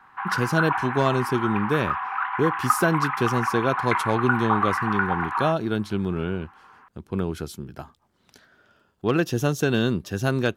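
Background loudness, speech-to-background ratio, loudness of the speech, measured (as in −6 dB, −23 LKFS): −26.5 LKFS, 1.0 dB, −25.5 LKFS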